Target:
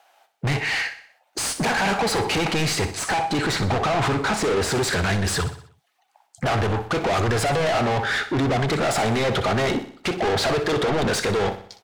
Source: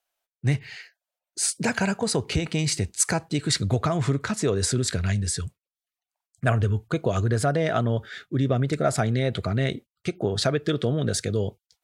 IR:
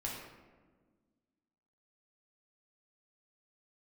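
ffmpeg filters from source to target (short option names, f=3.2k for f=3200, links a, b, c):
-filter_complex "[0:a]equalizer=f=810:t=o:w=0.26:g=11.5,asplit=2[a][b];[b]highpass=f=720:p=1,volume=34dB,asoftclip=type=tanh:threshold=-6dB[c];[a][c]amix=inputs=2:normalize=0,lowpass=f=1.7k:p=1,volume=-6dB,asettb=1/sr,asplit=3[d][e][f];[d]atrim=end=2.934[g];[e]atrim=start=2.93:end=4.72,asetpts=PTS-STARTPTS,afade=t=in:d=0.004:c=qsin,afade=t=out:st=1.786:d=0.004:c=qsin,highshelf=f=4k:g=-4[h];[f]atrim=start=4.716[i];[g][h]acrossfade=d=0.004:c1=hsin:c2=qsin[j];[j][i]acrossfade=d=0.004:c1=qsin:c2=hsin,asoftclip=type=tanh:threshold=-20dB,aecho=1:1:62|124|186|248|310:0.251|0.121|0.0579|0.0278|0.0133"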